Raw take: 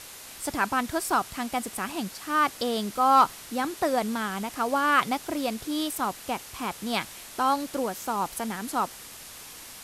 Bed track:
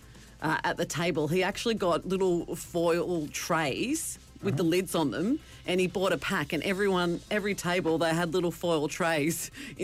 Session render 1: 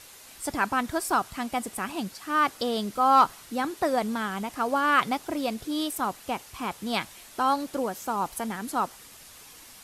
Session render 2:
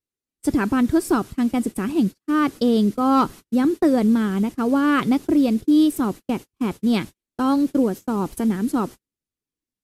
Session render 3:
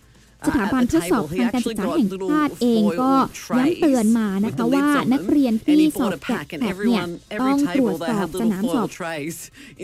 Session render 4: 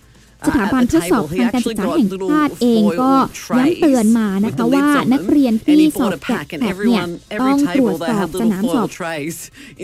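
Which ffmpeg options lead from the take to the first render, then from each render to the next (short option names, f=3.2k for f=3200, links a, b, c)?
-af "afftdn=nr=6:nf=-44"
-af "agate=range=-46dB:threshold=-36dB:ratio=16:detection=peak,lowshelf=f=500:t=q:w=1.5:g=12"
-filter_complex "[1:a]volume=-0.5dB[a];[0:a][a]amix=inputs=2:normalize=0"
-af "volume=4.5dB,alimiter=limit=-2dB:level=0:latency=1"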